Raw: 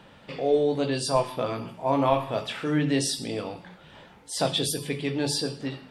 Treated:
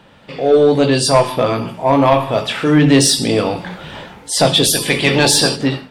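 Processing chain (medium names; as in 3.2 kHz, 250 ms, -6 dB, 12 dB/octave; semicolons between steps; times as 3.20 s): 4.63–5.55 s: spectral peaks clipped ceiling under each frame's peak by 15 dB; level rider gain up to 15.5 dB; saturation -7 dBFS, distortion -18 dB; trim +4.5 dB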